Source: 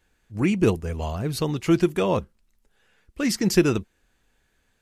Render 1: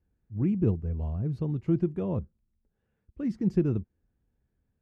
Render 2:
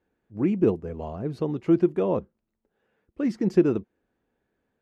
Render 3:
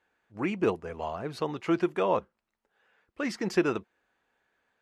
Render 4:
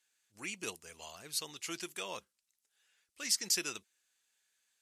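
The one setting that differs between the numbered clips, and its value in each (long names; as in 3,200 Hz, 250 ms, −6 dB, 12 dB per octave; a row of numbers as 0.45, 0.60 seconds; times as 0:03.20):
resonant band-pass, frequency: 100, 350, 950, 7,900 Hertz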